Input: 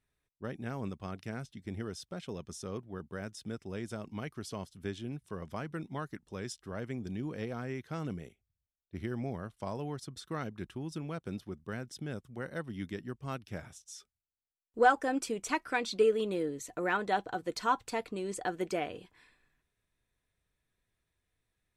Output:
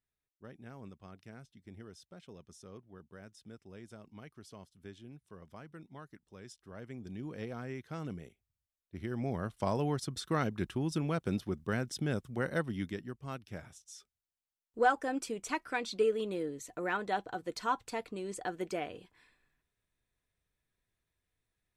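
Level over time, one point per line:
0:06.40 −11 dB
0:07.42 −3 dB
0:08.99 −3 dB
0:09.52 +6 dB
0:12.57 +6 dB
0:13.15 −3 dB

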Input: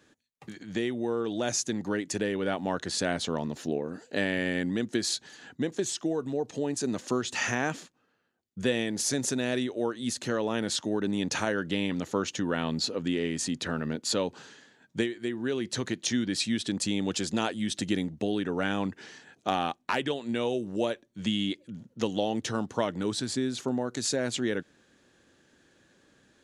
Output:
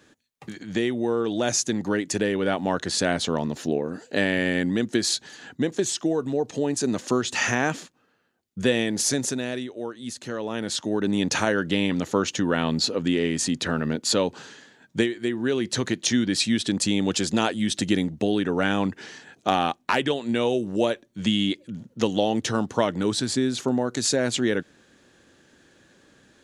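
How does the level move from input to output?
0:09.07 +5.5 dB
0:09.67 −3 dB
0:10.24 −3 dB
0:11.15 +6 dB

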